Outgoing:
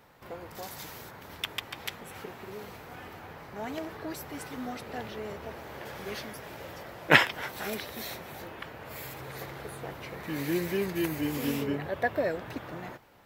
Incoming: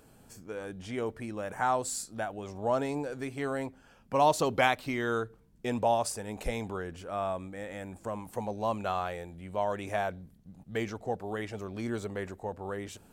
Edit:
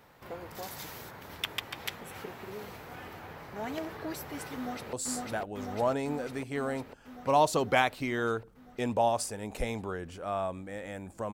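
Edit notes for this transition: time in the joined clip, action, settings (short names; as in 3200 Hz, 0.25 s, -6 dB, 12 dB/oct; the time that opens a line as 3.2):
outgoing
4.55–4.93 echo throw 0.5 s, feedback 75%, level -1 dB
4.93 switch to incoming from 1.79 s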